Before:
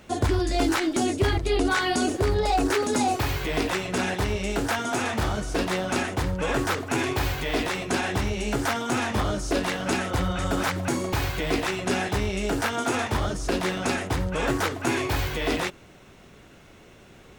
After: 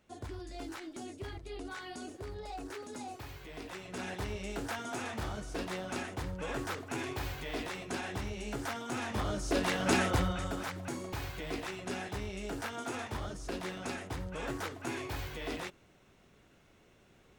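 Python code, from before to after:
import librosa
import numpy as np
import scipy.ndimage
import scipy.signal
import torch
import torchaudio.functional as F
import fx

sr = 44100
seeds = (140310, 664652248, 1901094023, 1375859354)

y = fx.gain(x, sr, db=fx.line((3.57, -20.0), (4.16, -12.0), (8.89, -12.0), (10.04, -1.0), (10.6, -13.0)))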